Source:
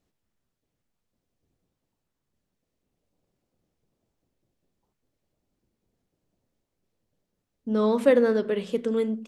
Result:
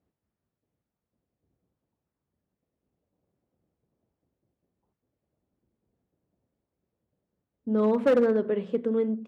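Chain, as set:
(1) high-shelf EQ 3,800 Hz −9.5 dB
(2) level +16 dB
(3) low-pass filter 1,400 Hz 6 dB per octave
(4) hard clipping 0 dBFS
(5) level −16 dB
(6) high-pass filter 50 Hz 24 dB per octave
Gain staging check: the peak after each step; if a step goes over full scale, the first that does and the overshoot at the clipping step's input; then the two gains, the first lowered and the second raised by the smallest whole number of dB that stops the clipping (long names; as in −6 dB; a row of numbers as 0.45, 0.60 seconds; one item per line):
−8.0, +8.0, +7.5, 0.0, −16.0, −13.0 dBFS
step 2, 7.5 dB
step 2 +8 dB, step 5 −8 dB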